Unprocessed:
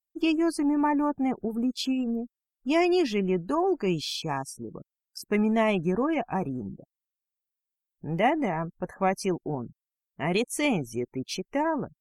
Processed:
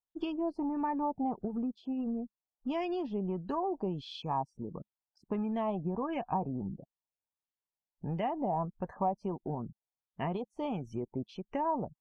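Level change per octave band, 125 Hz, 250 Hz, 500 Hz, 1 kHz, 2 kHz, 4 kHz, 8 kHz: −5.0 dB, −8.5 dB, −8.5 dB, −4.5 dB, −17.0 dB, −14.5 dB, below −30 dB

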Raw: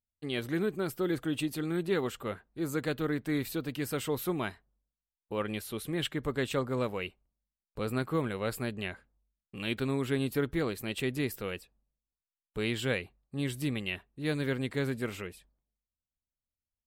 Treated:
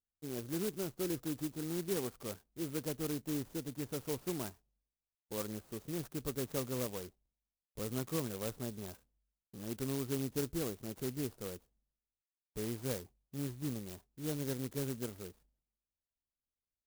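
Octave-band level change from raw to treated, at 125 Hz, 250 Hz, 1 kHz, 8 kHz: −6.0, −6.5, −10.0, +1.0 decibels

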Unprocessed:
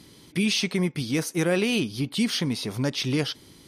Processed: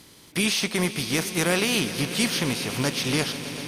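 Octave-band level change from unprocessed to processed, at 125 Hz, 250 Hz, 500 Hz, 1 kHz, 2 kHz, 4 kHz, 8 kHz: −1.0, −1.5, 0.0, +6.5, +4.5, +3.0, +6.5 decibels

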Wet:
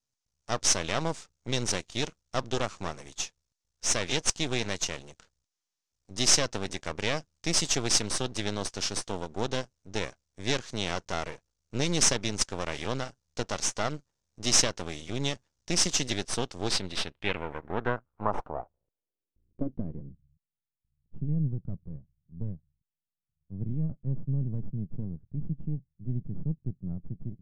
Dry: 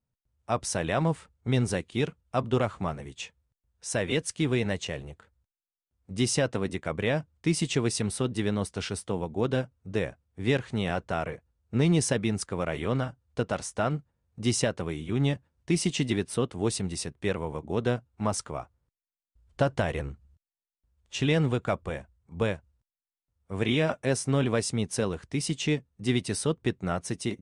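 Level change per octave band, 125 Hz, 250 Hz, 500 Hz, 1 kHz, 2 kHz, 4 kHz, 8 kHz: −4.5, −6.5, −6.0, −1.5, −1.5, +5.0, +6.5 decibels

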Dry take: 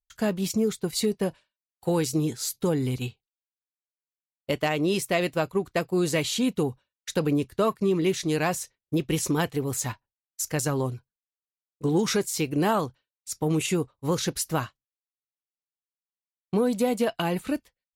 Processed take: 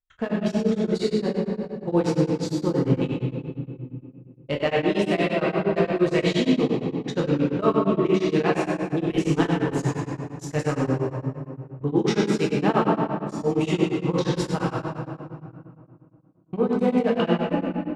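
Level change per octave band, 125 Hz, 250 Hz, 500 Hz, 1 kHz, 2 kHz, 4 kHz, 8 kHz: +4.0, +4.5, +4.0, +3.5, +2.0, −1.0, −11.0 decibels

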